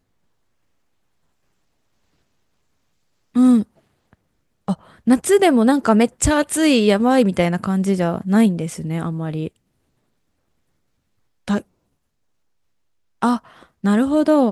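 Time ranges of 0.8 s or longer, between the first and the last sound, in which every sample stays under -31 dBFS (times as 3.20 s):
3.63–4.68 s
9.48–11.48 s
11.60–13.22 s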